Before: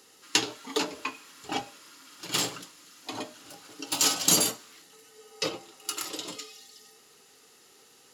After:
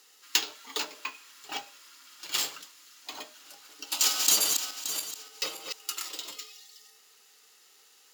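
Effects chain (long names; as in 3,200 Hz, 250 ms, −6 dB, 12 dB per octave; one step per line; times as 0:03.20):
0:03.85–0:05.85: feedback delay that plays each chunk backwards 287 ms, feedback 50%, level −5.5 dB
high-pass filter 1,500 Hz 6 dB per octave
bad sample-rate conversion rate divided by 2×, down filtered, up hold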